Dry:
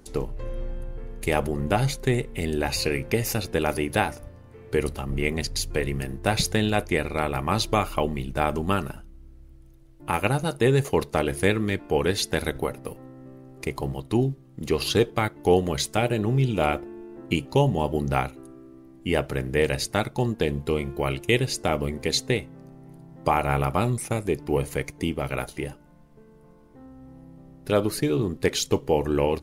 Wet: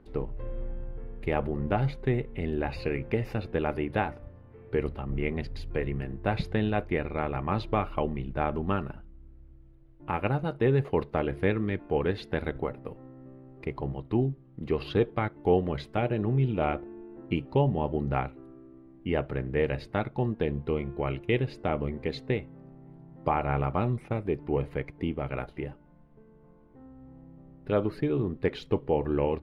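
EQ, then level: distance through air 440 m; -3.0 dB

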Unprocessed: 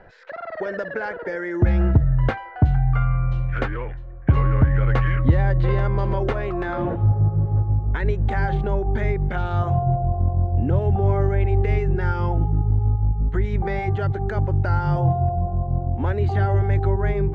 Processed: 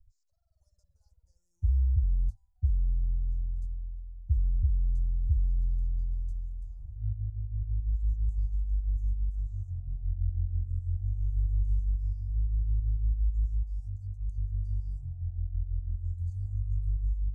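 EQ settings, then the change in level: inverse Chebyshev band-stop 190–3300 Hz, stop band 50 dB; Butterworth band-stop 2.2 kHz, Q 1.6; -5.0 dB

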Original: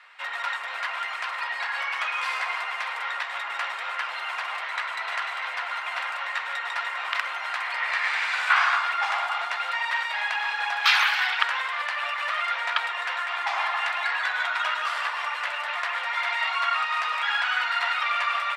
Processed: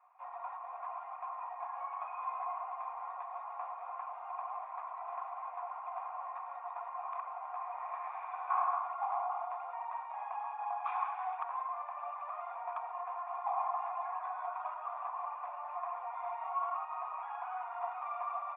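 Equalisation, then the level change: cascade formant filter a; +2.5 dB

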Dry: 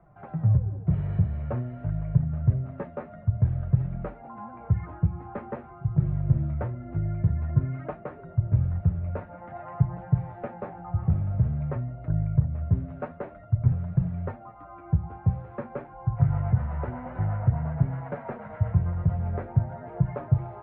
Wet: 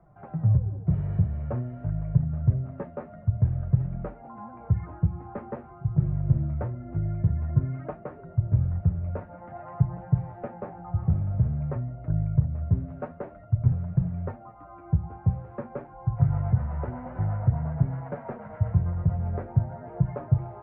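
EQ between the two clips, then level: treble shelf 2 kHz -9 dB; 0.0 dB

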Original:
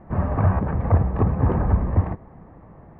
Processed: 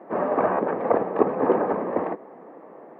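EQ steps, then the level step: high-pass 270 Hz 24 dB/octave; peaking EQ 480 Hz +6.5 dB 0.98 oct; +3.0 dB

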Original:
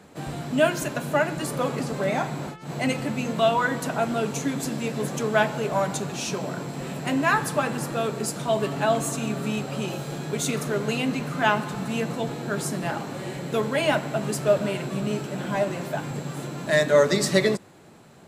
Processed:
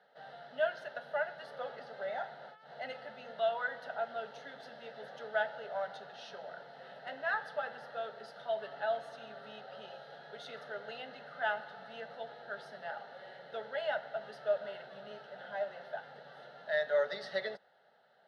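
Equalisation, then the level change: band-pass 520–3000 Hz; static phaser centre 1.6 kHz, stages 8; -9.0 dB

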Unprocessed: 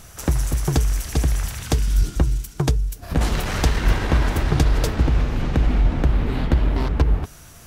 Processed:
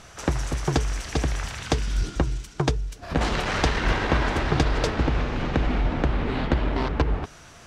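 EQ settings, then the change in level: distance through air 96 m; bass shelf 210 Hz -10.5 dB; +3.0 dB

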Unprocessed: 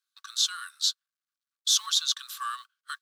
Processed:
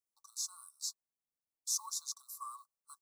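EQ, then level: elliptic band-stop 900–5900 Hz, stop band 50 dB; dynamic bell 1 kHz, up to +4 dB, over -55 dBFS, Q 1.2; fifteen-band graphic EQ 1.6 kHz -11 dB, 6.3 kHz -10 dB, 16 kHz -9 dB; +2.0 dB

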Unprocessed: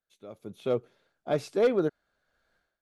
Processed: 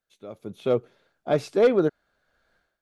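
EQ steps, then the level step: treble shelf 6.5 kHz -4.5 dB; +5.0 dB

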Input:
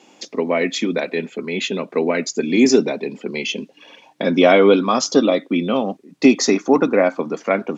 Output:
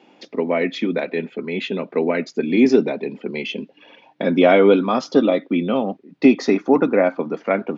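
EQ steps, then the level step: distance through air 320 m; treble shelf 4.6 kHz +6 dB; band-stop 1.1 kHz, Q 15; 0.0 dB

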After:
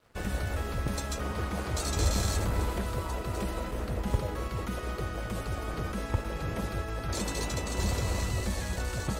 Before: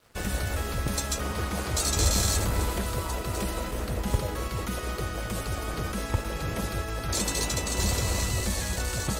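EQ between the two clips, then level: treble shelf 3.4 kHz -8.5 dB; -2.0 dB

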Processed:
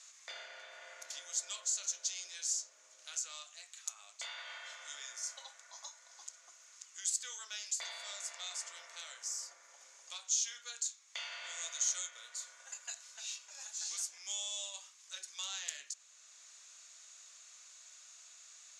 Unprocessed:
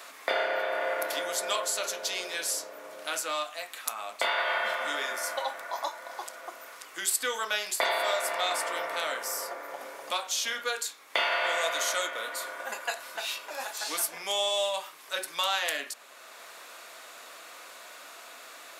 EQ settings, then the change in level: band-pass filter 6.7 kHz, Q 5.8; distance through air 71 m; +8.5 dB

